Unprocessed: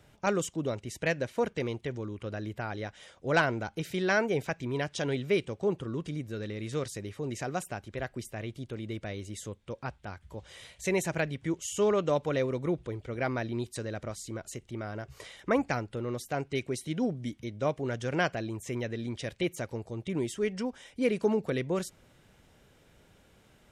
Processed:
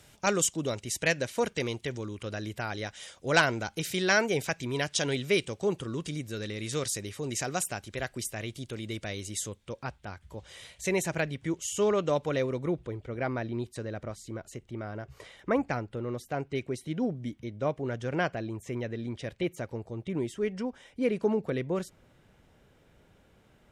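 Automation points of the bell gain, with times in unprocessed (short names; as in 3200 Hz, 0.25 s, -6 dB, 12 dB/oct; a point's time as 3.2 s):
bell 9200 Hz 2.9 oct
9.29 s +12 dB
10.01 s +2.5 dB
12.37 s +2.5 dB
13.11 s -6.5 dB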